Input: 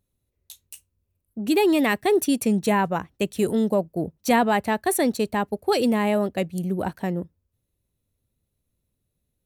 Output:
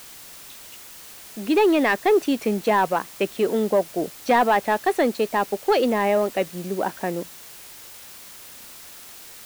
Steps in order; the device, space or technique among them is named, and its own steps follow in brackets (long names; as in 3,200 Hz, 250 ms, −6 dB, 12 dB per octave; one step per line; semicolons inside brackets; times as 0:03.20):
tape answering machine (band-pass filter 340–3,000 Hz; soft clipping −14 dBFS, distortion −19 dB; tape wow and flutter; white noise bed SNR 19 dB)
level +5 dB